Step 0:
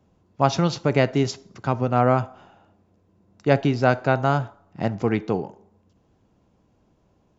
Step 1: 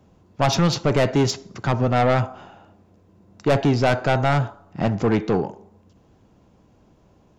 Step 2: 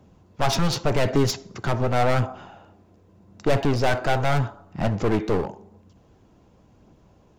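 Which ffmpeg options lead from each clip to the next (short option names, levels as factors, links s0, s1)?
-af "asoftclip=type=tanh:threshold=0.106,volume=2.24"
-af "aeval=exprs='clip(val(0),-1,0.0562)':c=same,aphaser=in_gain=1:out_gain=1:delay=3.2:decay=0.21:speed=0.87:type=triangular"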